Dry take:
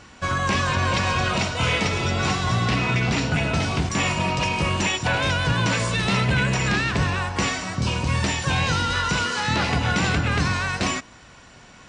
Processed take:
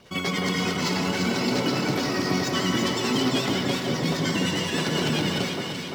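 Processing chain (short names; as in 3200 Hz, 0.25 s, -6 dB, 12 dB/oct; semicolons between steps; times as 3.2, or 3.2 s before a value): median filter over 9 samples; spectral gate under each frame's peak -30 dB strong; in parallel at -5 dB: companded quantiser 4-bit; on the sum: rotary speaker horn 5 Hz; vibrato 0.82 Hz 9.9 cents; echo with dull and thin repeats by turns 0.343 s, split 970 Hz, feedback 80%, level -3 dB; on a send at -10.5 dB: reverb RT60 3.1 s, pre-delay 13 ms; on the sum: speed mistake 7.5 ips tape played at 15 ips; gain -6.5 dB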